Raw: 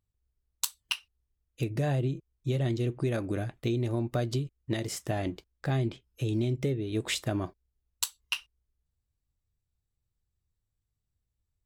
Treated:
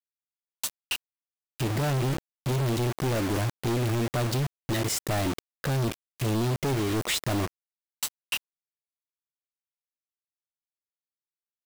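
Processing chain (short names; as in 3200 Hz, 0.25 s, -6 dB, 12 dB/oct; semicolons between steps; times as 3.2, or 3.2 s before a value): companded quantiser 2-bit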